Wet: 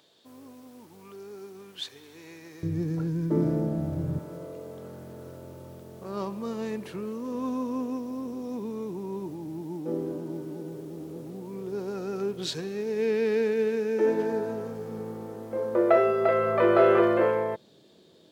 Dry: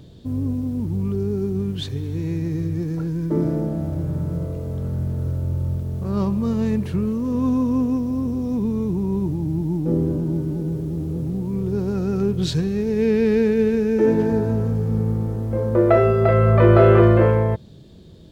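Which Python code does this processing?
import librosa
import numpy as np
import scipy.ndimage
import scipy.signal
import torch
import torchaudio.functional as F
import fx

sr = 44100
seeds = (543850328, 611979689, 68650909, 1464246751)

y = fx.highpass(x, sr, hz=fx.steps((0.0, 800.0), (2.63, 110.0), (4.19, 380.0)), slope=12)
y = y * 10.0 ** (-3.5 / 20.0)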